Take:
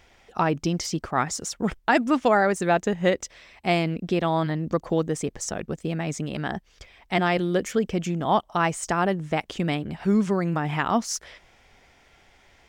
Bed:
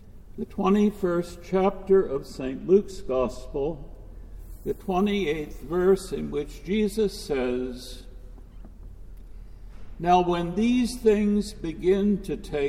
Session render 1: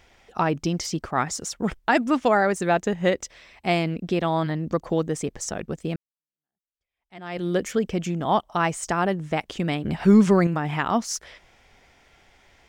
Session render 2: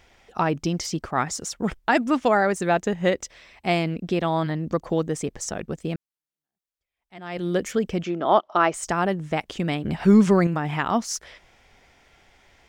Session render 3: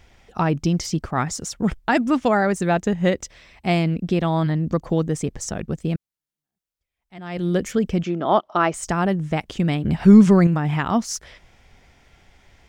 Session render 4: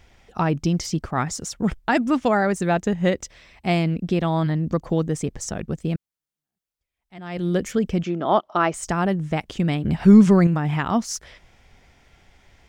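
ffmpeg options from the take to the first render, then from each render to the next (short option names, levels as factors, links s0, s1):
-filter_complex "[0:a]asettb=1/sr,asplit=3[s0][s1][s2];[s0]atrim=end=9.844[s3];[s1]atrim=start=9.84:end=10.47,asetpts=PTS-STARTPTS,afade=t=in:d=0.004:c=qsin,afade=t=out:st=0.626:d=0.004:c=qsin,acontrast=69[s4];[s2]atrim=start=10.466[s5];[s3][s4]acrossfade=d=0.004:c1=hsin:c2=qsin[s6];[s6][s5]acrossfade=d=0.004:c1=qsin:c2=hsin,asplit=2[s7][s8];[s7]atrim=end=5.96,asetpts=PTS-STARTPTS,afade=t=out:st=5.956:d=0.004:c=hsin[s9];[s8]atrim=start=5.96,asetpts=PTS-STARTPTS,afade=t=in:d=1.51:c=exp[s10];[s9][s10]concat=n=2:v=0:a=1"
-filter_complex "[0:a]asettb=1/sr,asplit=3[s0][s1][s2];[s0]atrim=end=8.034[s3];[s1]atrim=start=8.03:end=8.74,asetpts=PTS-STARTPTS,afade=t=in:d=0.004:c=qsin,afade=t=out:st=0.706:d=0.004:c=qsin,highpass=260,equalizer=f=360:t=q:w=4:g=7,equalizer=f=610:t=q:w=4:g=7,equalizer=f=1300:t=q:w=4:g=7,lowpass=f=5200:w=0.5412,lowpass=f=5200:w=1.3066[s4];[s2]atrim=start=8.736[s5];[s3][s4]acrossfade=d=0.004:c1=hsin:c2=qsin[s6];[s6][s5]acrossfade=d=0.004:c1=qsin:c2=hsin"
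-af "bass=f=250:g=8,treble=f=4000:g=1"
-af "volume=0.891"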